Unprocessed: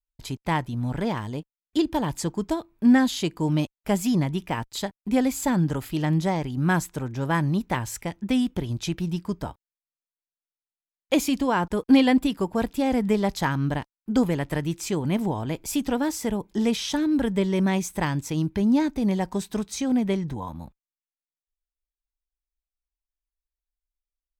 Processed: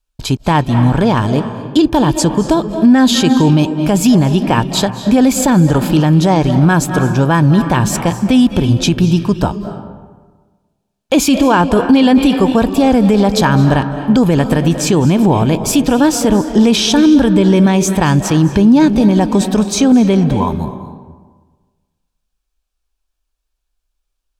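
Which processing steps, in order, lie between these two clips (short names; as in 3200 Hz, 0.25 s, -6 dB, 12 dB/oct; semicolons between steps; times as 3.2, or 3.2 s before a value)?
high shelf 12000 Hz -11.5 dB; notch 2000 Hz, Q 5.3; reverb RT60 1.4 s, pre-delay 0.175 s, DRR 11 dB; maximiser +18 dB; gain -1 dB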